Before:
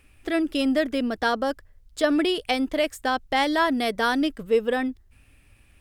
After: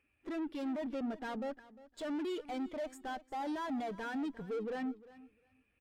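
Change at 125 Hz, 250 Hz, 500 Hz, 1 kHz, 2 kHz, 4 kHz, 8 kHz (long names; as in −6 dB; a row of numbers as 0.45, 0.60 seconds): can't be measured, −13.0 dB, −16.0 dB, −15.5 dB, −19.5 dB, −22.5 dB, −17.5 dB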